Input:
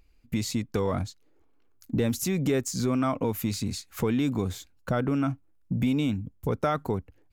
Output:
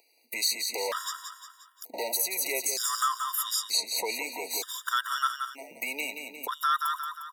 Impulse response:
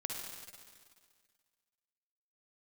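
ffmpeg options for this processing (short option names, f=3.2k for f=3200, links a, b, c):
-filter_complex "[0:a]asettb=1/sr,asplit=3[a][b][c];[a]atrim=end=0.674[d];[b]atrim=start=0.67:end=2.16,asetpts=PTS-STARTPTS,afade=t=in:d=0.004:c=qsin,afade=t=out:st=1.486:d=0.004:c=qsin,asoftclip=type=hard:threshold=-28dB[e];[c]atrim=start=2.156[f];[d][e]acrossfade=d=0.004:c1=hsin:c2=qsin[g];[g][f]acrossfade=d=0.004:c1=qsin:c2=hsin,asettb=1/sr,asplit=3[h][i][j];[h]atrim=end=3.354[k];[i]atrim=start=3.35:end=4.17,asetpts=PTS-STARTPTS,afade=t=in:d=0.004:c=qsin,afade=t=out:st=0.816:d=0.004:c=qsin,lowpass=10k[l];[j]atrim=start=4.166[m];[k][l]acrossfade=d=0.004:c1=hsin:c2=qsin[n];[n][m]acrossfade=d=0.004:c1=qsin:c2=hsin,asettb=1/sr,asplit=3[o][p][q];[o]atrim=end=4.914[r];[p]atrim=start=4.91:end=5.77,asetpts=PTS-STARTPTS,afade=t=in:d=0.004:c=qsin,afade=t=out:st=0.856:d=0.004:c=qsin,tiltshelf=f=1.2k:g=-7.5[s];[q]atrim=start=5.766[t];[r][s]acrossfade=d=0.004:c1=hsin:c2=qsin[u];[u][t]acrossfade=d=0.004:c1=qsin:c2=hsin,aecho=1:1:177|354|531|708|885|1062:0.447|0.214|0.103|0.0494|0.0237|0.0114,acrossover=split=770|1600[v][w][x];[v]acompressor=threshold=-36dB:ratio=6[y];[w]aecho=1:1:3.1:0.4[z];[x]aexciter=amount=2.3:drive=3.3:freq=3.6k[aa];[y][z][aa]amix=inputs=3:normalize=0,alimiter=limit=-21.5dB:level=0:latency=1:release=260,highpass=f=460:w=0.5412,highpass=f=460:w=1.3066,afftfilt=real='re*gt(sin(2*PI*0.54*pts/sr)*(1-2*mod(floor(b*sr/1024/960),2)),0)':imag='im*gt(sin(2*PI*0.54*pts/sr)*(1-2*mod(floor(b*sr/1024/960),2)),0)':win_size=1024:overlap=0.75,volume=8.5dB"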